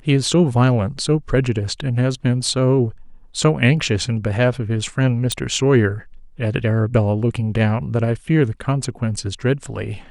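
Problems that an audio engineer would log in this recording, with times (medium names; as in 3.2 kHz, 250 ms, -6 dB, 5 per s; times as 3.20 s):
5.32 s: pop -7 dBFS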